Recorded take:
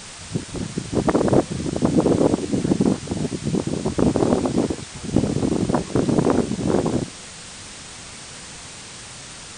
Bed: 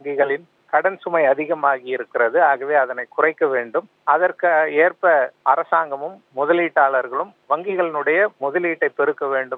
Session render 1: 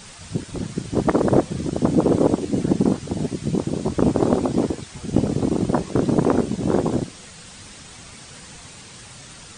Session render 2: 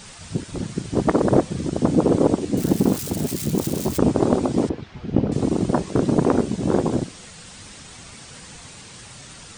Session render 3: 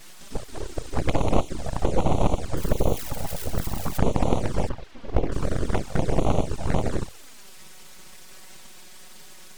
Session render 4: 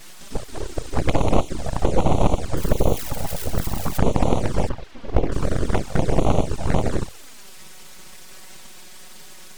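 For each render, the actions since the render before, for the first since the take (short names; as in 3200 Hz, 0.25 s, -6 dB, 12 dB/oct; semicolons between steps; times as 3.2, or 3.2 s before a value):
denoiser 6 dB, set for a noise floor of -38 dBFS
2.57–3.98 switching spikes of -22.5 dBFS; 4.69–5.32 air absorption 260 m
full-wave rectifier; envelope flanger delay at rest 6.7 ms, full sweep at -14.5 dBFS
gain +3.5 dB; limiter -1 dBFS, peak gain reduction 1 dB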